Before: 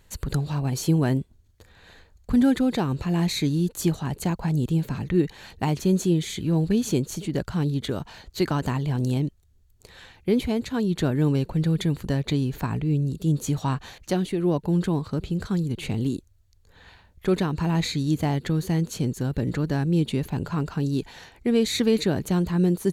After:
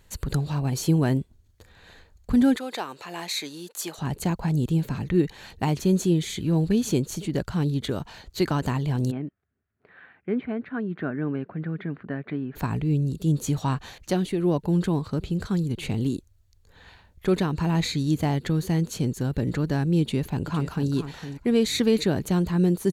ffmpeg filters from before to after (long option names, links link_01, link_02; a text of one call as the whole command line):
ffmpeg -i in.wav -filter_complex "[0:a]asettb=1/sr,asplit=3[link_01][link_02][link_03];[link_01]atrim=end=2.564[link_04];[link_02]atrim=start=2.56:end=3.98,asetpts=PTS-STARTPTS,afade=type=in:duration=0.004:curve=qsin,afade=type=out:start_time=1.416:duration=0.004:curve=qsin,highpass=630[link_05];[link_03]atrim=start=3.976[link_06];[link_04][link_05]acrossfade=duration=0.004:curve1=hsin:curve2=qsin[link_07];[link_07][link_06]acrossfade=duration=0.004:curve1=qsin:curve2=hsin,asplit=3[link_08][link_09][link_10];[link_08]afade=type=out:start_time=9.1:duration=0.02[link_11];[link_09]highpass=250,equalizer=frequency=350:width_type=q:width=4:gain=-5,equalizer=frequency=510:width_type=q:width=4:gain=-8,equalizer=frequency=910:width_type=q:width=4:gain=-9,equalizer=frequency=1500:width_type=q:width=4:gain=4,lowpass=frequency=2000:width=0.5412,lowpass=frequency=2000:width=1.3066,afade=type=in:start_time=9.1:duration=0.02,afade=type=out:start_time=12.55:duration=0.02[link_12];[link_10]afade=type=in:start_time=12.55:duration=0.02[link_13];[link_11][link_12][link_13]amix=inputs=3:normalize=0,asplit=2[link_14][link_15];[link_15]afade=type=in:start_time=20.01:duration=0.01,afade=type=out:start_time=20.91:duration=0.01,aecho=0:1:460|920:0.298538|0.0447807[link_16];[link_14][link_16]amix=inputs=2:normalize=0" out.wav